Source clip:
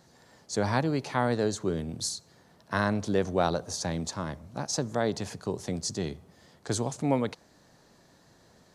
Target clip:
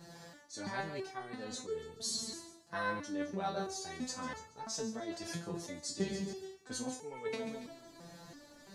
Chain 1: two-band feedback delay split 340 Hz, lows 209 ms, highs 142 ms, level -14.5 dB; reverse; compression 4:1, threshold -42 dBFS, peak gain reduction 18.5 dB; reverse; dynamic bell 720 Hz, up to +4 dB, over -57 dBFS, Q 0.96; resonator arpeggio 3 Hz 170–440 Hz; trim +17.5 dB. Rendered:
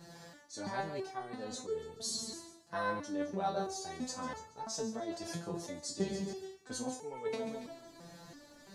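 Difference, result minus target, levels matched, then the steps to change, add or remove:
2 kHz band -3.0 dB
change: dynamic bell 2.1 kHz, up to +4 dB, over -57 dBFS, Q 0.96

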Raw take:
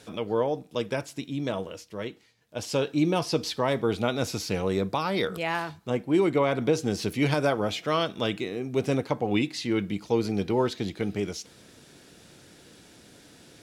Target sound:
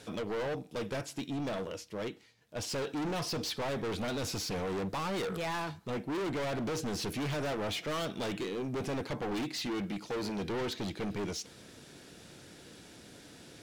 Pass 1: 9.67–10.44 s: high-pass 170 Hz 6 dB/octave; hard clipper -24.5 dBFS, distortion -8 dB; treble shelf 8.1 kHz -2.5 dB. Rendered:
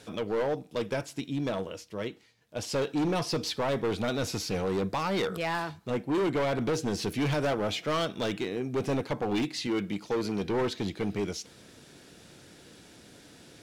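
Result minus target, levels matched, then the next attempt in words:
hard clipper: distortion -5 dB
9.67–10.44 s: high-pass 170 Hz 6 dB/octave; hard clipper -32.5 dBFS, distortion -3 dB; treble shelf 8.1 kHz -2.5 dB

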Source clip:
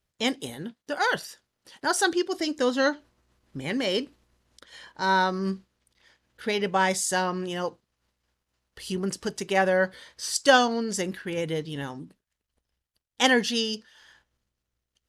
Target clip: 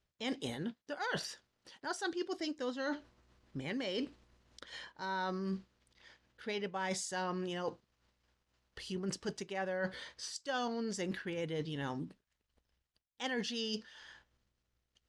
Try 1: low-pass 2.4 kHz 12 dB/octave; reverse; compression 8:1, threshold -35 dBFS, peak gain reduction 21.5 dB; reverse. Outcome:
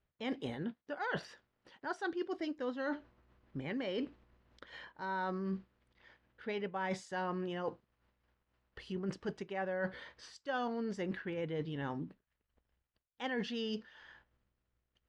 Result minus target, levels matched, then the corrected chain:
8 kHz band -14.0 dB
low-pass 6.5 kHz 12 dB/octave; reverse; compression 8:1, threshold -35 dBFS, peak gain reduction 21.5 dB; reverse

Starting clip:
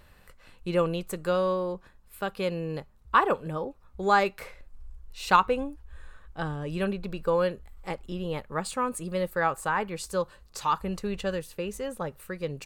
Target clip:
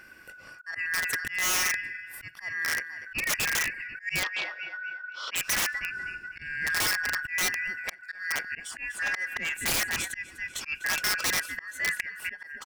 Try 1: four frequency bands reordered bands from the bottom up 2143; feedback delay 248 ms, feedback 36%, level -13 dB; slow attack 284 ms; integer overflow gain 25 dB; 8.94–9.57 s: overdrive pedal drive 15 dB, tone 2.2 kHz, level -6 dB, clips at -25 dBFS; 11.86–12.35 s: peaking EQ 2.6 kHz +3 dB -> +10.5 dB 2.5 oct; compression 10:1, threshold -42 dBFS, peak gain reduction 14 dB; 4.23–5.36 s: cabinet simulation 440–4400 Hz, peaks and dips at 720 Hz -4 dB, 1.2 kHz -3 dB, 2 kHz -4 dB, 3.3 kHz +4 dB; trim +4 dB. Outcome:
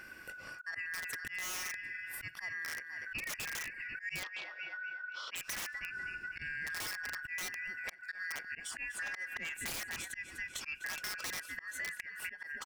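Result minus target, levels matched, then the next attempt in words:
compression: peak gain reduction +14 dB
four frequency bands reordered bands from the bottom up 2143; feedback delay 248 ms, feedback 36%, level -13 dB; slow attack 284 ms; integer overflow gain 25 dB; 4.23–5.36 s: cabinet simulation 440–4400 Hz, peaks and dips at 720 Hz -4 dB, 1.2 kHz -3 dB, 2 kHz -4 dB, 3.3 kHz +4 dB; 8.94–9.57 s: overdrive pedal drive 15 dB, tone 2.2 kHz, level -6 dB, clips at -25 dBFS; 11.86–12.35 s: peaking EQ 2.6 kHz +3 dB -> +10.5 dB 2.5 oct; trim +4 dB

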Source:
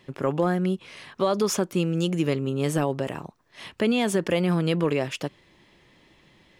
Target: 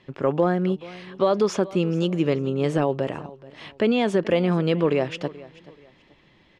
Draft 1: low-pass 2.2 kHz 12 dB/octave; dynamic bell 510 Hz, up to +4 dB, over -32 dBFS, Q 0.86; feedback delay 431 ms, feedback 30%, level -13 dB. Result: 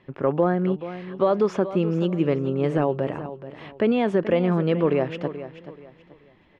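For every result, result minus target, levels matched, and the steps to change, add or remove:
4 kHz band -6.5 dB; echo-to-direct +6.5 dB
change: low-pass 4.6 kHz 12 dB/octave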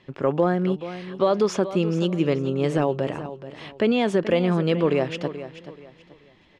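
echo-to-direct +6.5 dB
change: feedback delay 431 ms, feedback 30%, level -19.5 dB

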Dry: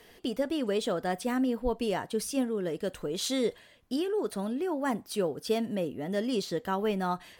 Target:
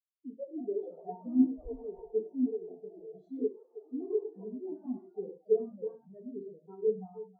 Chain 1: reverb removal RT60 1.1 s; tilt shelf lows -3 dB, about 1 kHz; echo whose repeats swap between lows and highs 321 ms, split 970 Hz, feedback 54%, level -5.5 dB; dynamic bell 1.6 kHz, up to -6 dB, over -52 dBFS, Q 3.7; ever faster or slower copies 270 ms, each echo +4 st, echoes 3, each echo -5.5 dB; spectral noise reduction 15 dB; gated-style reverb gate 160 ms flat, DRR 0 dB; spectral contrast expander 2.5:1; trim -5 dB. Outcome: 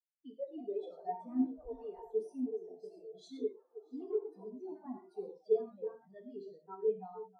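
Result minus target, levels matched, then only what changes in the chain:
1 kHz band +9.5 dB
change: tilt shelf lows +5.5 dB, about 1 kHz

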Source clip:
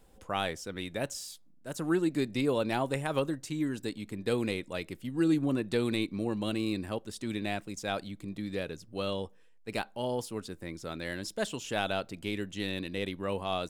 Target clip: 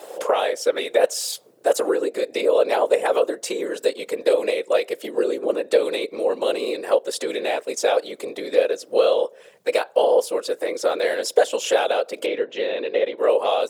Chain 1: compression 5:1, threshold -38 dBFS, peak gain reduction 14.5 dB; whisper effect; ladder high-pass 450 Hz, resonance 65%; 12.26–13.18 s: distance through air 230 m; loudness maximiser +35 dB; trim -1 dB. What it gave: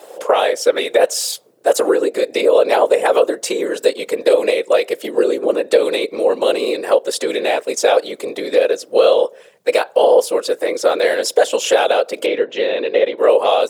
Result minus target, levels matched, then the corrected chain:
compression: peak gain reduction -6.5 dB
compression 5:1, threshold -46 dBFS, peak gain reduction 20.5 dB; whisper effect; ladder high-pass 450 Hz, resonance 65%; 12.26–13.18 s: distance through air 230 m; loudness maximiser +35 dB; trim -1 dB

